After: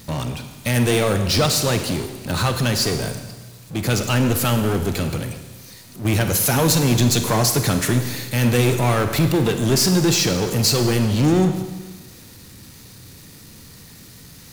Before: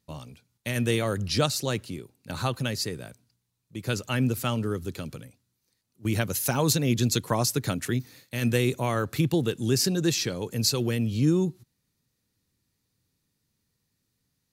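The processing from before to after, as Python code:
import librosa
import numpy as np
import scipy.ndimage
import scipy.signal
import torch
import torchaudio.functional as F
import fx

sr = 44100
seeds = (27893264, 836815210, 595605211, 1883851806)

y = fx.power_curve(x, sr, exponent=0.5)
y = fx.rev_schroeder(y, sr, rt60_s=1.3, comb_ms=33, drr_db=7.0)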